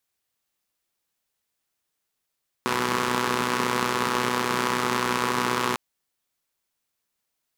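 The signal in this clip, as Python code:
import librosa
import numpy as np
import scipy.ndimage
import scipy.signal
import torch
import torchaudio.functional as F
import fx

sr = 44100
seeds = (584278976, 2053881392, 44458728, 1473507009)

y = fx.engine_four(sr, seeds[0], length_s=3.1, rpm=3700, resonances_hz=(230.0, 400.0, 1000.0))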